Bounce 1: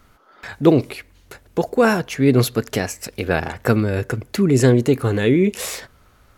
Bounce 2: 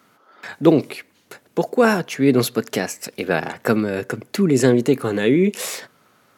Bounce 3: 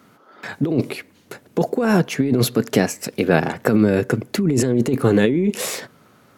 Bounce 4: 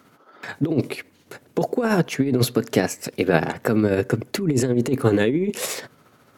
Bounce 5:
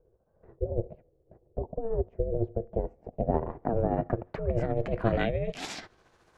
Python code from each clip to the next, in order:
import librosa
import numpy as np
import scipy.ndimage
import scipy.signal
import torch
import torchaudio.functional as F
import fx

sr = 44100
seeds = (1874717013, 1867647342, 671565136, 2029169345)

y1 = scipy.signal.sosfilt(scipy.signal.butter(4, 150.0, 'highpass', fs=sr, output='sos'), x)
y2 = fx.low_shelf(y1, sr, hz=430.0, db=9.0)
y2 = fx.over_compress(y2, sr, threshold_db=-14.0, ratio=-1.0)
y2 = y2 * librosa.db_to_amplitude(-2.0)
y3 = fx.peak_eq(y2, sr, hz=200.0, db=-6.0, octaves=0.24)
y3 = y3 * (1.0 - 0.42 / 2.0 + 0.42 / 2.0 * np.cos(2.0 * np.pi * 14.0 * (np.arange(len(y3)) / sr)))
y4 = fx.filter_sweep_lowpass(y3, sr, from_hz=260.0, to_hz=7800.0, start_s=2.69, end_s=6.25, q=1.1)
y4 = y4 * np.sin(2.0 * np.pi * 230.0 * np.arange(len(y4)) / sr)
y4 = y4 * librosa.db_to_amplitude(-5.5)